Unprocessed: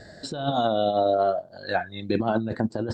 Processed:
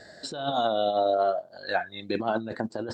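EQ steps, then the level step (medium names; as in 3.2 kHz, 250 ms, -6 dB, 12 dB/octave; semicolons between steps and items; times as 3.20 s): bass shelf 110 Hz -7 dB; bass shelf 310 Hz -8.5 dB; 0.0 dB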